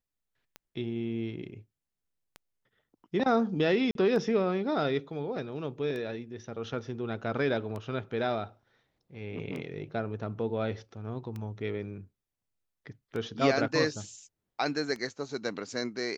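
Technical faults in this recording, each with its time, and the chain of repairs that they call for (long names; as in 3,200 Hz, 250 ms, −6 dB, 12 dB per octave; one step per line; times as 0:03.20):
scratch tick 33 1/3 rpm −26 dBFS
0:03.91–0:03.95: drop-out 42 ms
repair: click removal
repair the gap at 0:03.91, 42 ms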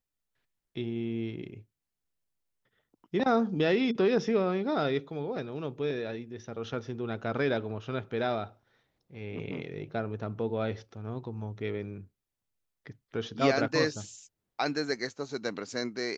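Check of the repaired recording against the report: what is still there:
none of them is left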